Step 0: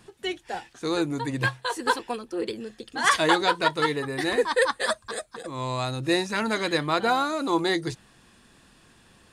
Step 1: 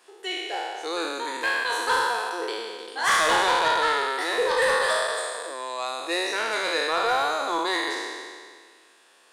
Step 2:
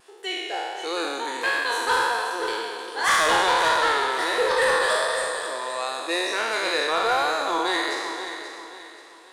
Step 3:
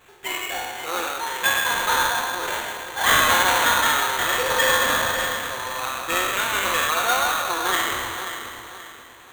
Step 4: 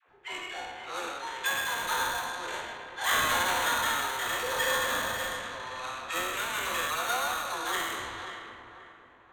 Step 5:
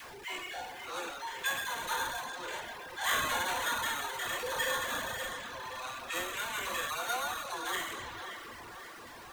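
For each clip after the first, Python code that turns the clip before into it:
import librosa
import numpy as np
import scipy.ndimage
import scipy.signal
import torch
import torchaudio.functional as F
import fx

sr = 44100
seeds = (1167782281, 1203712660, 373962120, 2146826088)

y1 = fx.spec_trails(x, sr, decay_s=1.89)
y1 = scipy.signal.sosfilt(scipy.signal.butter(4, 410.0, 'highpass', fs=sr, output='sos'), y1)
y1 = 10.0 ** (-12.5 / 20.0) * np.tanh(y1 / 10.0 ** (-12.5 / 20.0))
y1 = y1 * librosa.db_to_amplitude(-2.0)
y2 = fx.peak_eq(y1, sr, hz=84.0, db=6.0, octaves=0.26)
y2 = fx.vibrato(y2, sr, rate_hz=1.4, depth_cents=27.0)
y2 = fx.echo_feedback(y2, sr, ms=531, feedback_pct=36, wet_db=-10.0)
y2 = y2 * librosa.db_to_amplitude(1.0)
y3 = fx.highpass(y2, sr, hz=1400.0, slope=6)
y3 = y3 + 0.65 * np.pad(y3, (int(5.6 * sr / 1000.0), 0))[:len(y3)]
y3 = fx.sample_hold(y3, sr, seeds[0], rate_hz=5100.0, jitter_pct=0)
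y3 = y3 * librosa.db_to_amplitude(4.0)
y4 = fx.env_lowpass(y3, sr, base_hz=1600.0, full_db=-19.5)
y4 = fx.dispersion(y4, sr, late='lows', ms=83.0, hz=510.0)
y4 = y4 * librosa.db_to_amplitude(-9.0)
y5 = y4 + 0.5 * 10.0 ** (-38.0 / 20.0) * np.sign(y4)
y5 = fx.dereverb_blind(y5, sr, rt60_s=0.92)
y5 = fx.notch(y5, sr, hz=1300.0, q=19.0)
y5 = y5 * librosa.db_to_amplitude(-3.5)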